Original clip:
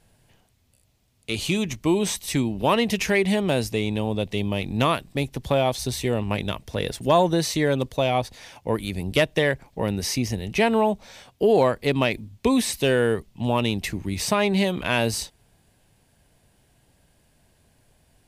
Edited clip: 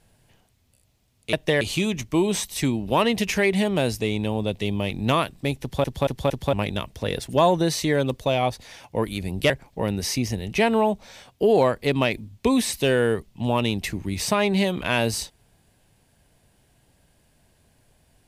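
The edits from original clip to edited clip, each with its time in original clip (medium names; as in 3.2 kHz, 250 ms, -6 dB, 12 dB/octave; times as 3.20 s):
5.33 s: stutter in place 0.23 s, 4 plays
9.22–9.50 s: move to 1.33 s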